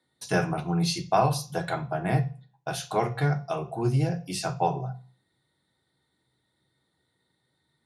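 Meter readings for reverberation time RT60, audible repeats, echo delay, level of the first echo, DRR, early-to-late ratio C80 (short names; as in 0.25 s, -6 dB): 0.40 s, none, none, none, 6.5 dB, 21.0 dB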